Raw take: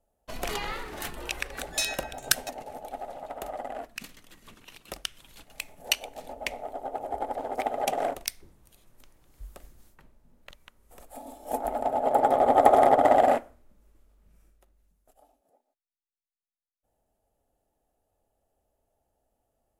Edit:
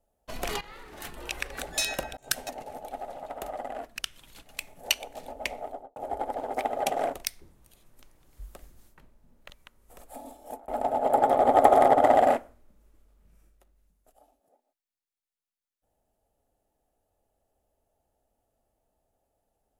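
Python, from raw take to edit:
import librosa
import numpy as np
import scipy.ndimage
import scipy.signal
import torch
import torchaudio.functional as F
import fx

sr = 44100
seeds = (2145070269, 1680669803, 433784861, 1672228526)

y = fx.studio_fade_out(x, sr, start_s=6.67, length_s=0.3)
y = fx.edit(y, sr, fx.fade_in_from(start_s=0.61, length_s=0.87, floor_db=-17.0),
    fx.fade_in_span(start_s=2.17, length_s=0.39, curve='qsin'),
    fx.cut(start_s=3.99, length_s=1.01),
    fx.fade_out_span(start_s=11.24, length_s=0.45), tone=tone)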